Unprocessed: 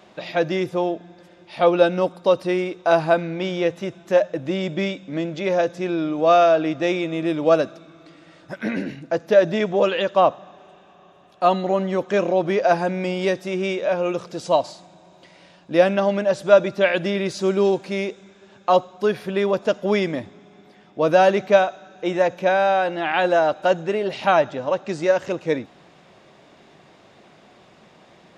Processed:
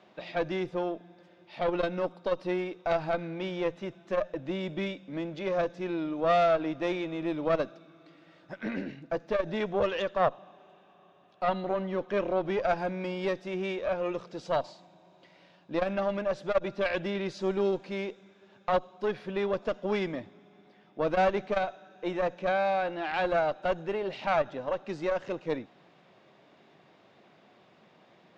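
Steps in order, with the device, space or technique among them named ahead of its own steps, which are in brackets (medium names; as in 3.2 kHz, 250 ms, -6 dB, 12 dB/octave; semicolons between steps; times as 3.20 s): valve radio (band-pass 110–4600 Hz; valve stage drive 10 dB, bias 0.7; transformer saturation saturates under 260 Hz); 11.44–12.45 s: low-pass 5.4 kHz 12 dB/octave; trim -4.5 dB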